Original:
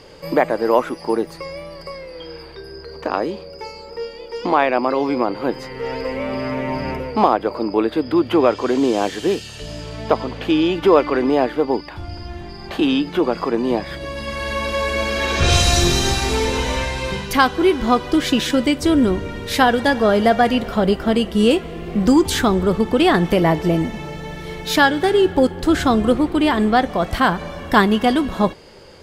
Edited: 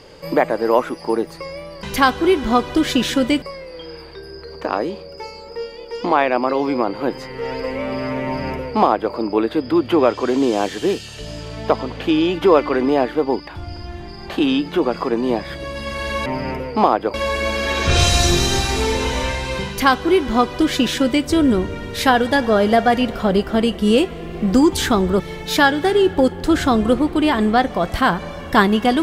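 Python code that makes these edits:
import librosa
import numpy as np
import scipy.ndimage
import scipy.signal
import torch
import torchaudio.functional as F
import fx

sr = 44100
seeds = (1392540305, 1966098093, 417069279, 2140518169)

y = fx.edit(x, sr, fx.duplicate(start_s=6.66, length_s=0.88, to_s=14.67),
    fx.duplicate(start_s=17.2, length_s=1.59, to_s=1.83),
    fx.cut(start_s=22.73, length_s=1.66), tone=tone)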